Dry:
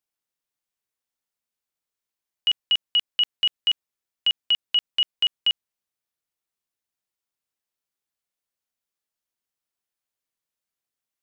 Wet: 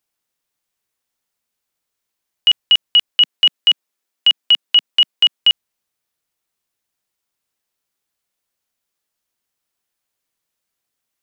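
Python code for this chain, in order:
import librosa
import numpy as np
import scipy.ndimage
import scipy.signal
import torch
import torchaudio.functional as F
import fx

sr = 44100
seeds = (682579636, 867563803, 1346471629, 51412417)

y = fx.highpass(x, sr, hz=190.0, slope=24, at=(3.12, 5.41))
y = y * librosa.db_to_amplitude(9.0)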